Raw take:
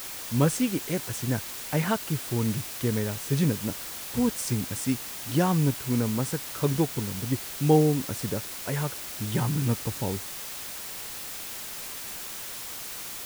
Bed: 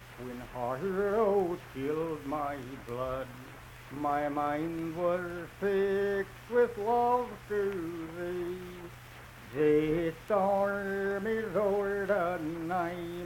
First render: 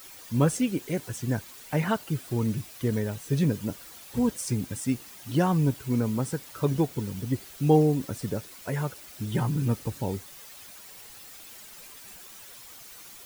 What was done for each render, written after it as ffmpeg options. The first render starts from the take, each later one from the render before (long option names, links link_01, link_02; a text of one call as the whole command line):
ffmpeg -i in.wav -af "afftdn=noise_reduction=11:noise_floor=-38" out.wav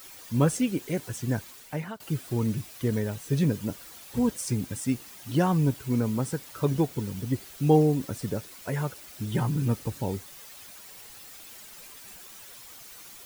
ffmpeg -i in.wav -filter_complex "[0:a]asplit=2[link_01][link_02];[link_01]atrim=end=2,asetpts=PTS-STARTPTS,afade=type=out:start_time=1.47:duration=0.53:silence=0.105925[link_03];[link_02]atrim=start=2,asetpts=PTS-STARTPTS,afade=type=in:duration=0.004:curve=hsin:silence=0.105925[link_04];[link_03][link_04]concat=n=2:v=0:a=1" out.wav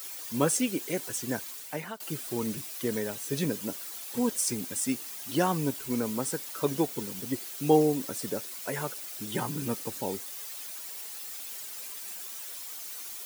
ffmpeg -i in.wav -af "highpass=260,highshelf=frequency=4100:gain=7.5" out.wav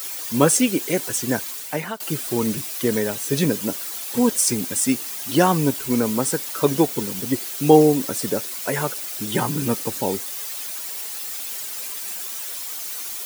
ffmpeg -i in.wav -af "volume=9.5dB,alimiter=limit=-1dB:level=0:latency=1" out.wav